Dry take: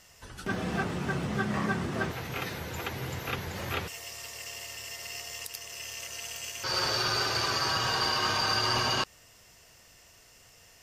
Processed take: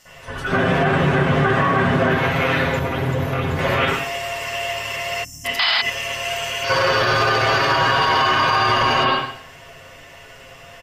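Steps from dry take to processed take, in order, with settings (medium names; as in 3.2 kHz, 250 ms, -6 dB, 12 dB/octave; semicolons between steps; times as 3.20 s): bass shelf 200 Hz -5 dB; comb 7.4 ms, depth 65%; reverberation, pre-delay 53 ms, DRR -15 dB; 5.59–5.82 s: painted sound noise 640–5200 Hz -14 dBFS; 5.43–5.90 s: small resonant body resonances 240/2000/3000 Hz, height 14 dB; peak limiter -11 dBFS, peak gain reduction 11.5 dB; 2.79–3.59 s: peaking EQ 2.3 kHz -9 dB 2.9 oct; 5.24–5.45 s: time-frequency box 340–5200 Hz -30 dB; trim +2.5 dB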